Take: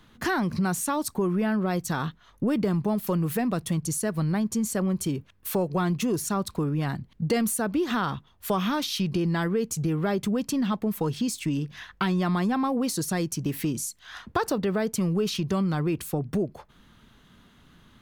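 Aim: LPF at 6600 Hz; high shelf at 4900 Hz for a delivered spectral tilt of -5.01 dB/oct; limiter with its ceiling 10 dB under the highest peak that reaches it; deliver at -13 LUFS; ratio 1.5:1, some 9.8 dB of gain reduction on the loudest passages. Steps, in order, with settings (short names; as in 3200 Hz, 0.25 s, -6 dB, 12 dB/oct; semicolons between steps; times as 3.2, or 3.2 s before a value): LPF 6600 Hz; high shelf 4900 Hz +4 dB; compressor 1.5:1, threshold -50 dBFS; gain +26.5 dB; limiter -5 dBFS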